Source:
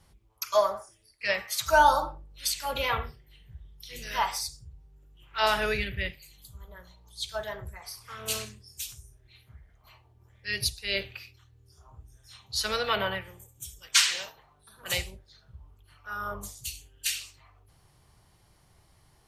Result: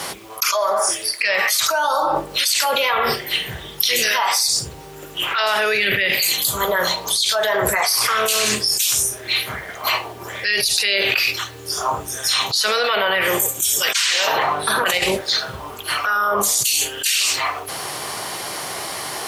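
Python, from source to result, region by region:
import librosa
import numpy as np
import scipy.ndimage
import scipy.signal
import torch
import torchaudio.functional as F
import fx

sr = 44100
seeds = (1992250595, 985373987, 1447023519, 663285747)

y = fx.chain(x, sr, fx.bass_treble(bass_db=5, treble_db=-10),
    fx.over_compress(threshold_db=-38.0, ratio=-0.5), at=(14.27, 15.12))
y = scipy.signal.sosfilt(scipy.signal.butter(2, 410.0, 'highpass', fs=sr, output='sos'), y)
y = fx.notch(y, sr, hz=880.0, q=25.0)
y = fx.env_flatten(y, sr, amount_pct=100)
y = F.gain(torch.from_numpy(y), -1.0).numpy()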